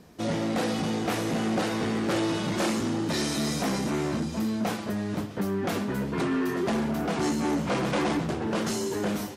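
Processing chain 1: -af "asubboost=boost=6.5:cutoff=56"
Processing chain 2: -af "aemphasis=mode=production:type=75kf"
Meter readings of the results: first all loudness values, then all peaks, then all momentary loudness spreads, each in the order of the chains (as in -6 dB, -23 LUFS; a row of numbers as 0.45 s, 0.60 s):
-29.0 LUFS, -25.5 LUFS; -18.0 dBFS, -12.0 dBFS; 4 LU, 5 LU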